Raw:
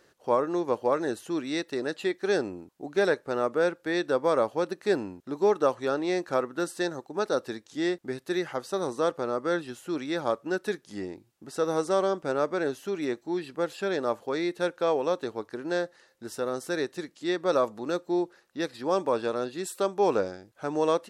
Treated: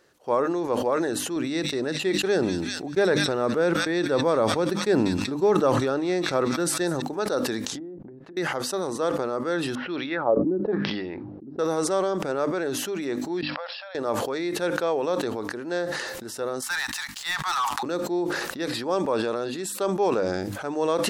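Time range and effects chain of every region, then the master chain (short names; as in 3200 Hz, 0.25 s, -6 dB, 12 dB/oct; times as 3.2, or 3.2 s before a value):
1.36–7.02 gate -45 dBFS, range -9 dB + bell 120 Hz +6.5 dB 2.5 oct + thin delay 0.192 s, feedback 42%, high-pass 2900 Hz, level -8.5 dB
7.63–8.37 treble ducked by the level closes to 390 Hz, closed at -28.5 dBFS + compressor, threshold -43 dBFS
9.75–11.59 Chebyshev low-pass 5600 Hz, order 6 + LFO low-pass sine 1 Hz 280–3600 Hz
13.41–13.95 level quantiser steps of 19 dB + brick-wall FIR band-pass 510–5600 Hz
16.62–17.83 steep high-pass 790 Hz 96 dB/oct + sample leveller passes 3
whole clip: notches 50/100/150/200/250/300 Hz; sustainer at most 27 dB/s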